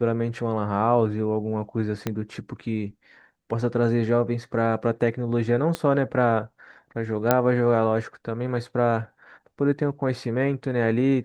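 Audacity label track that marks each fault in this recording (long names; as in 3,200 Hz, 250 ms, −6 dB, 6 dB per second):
2.070000	2.070000	click −12 dBFS
5.750000	5.750000	click −12 dBFS
7.310000	7.310000	click −4 dBFS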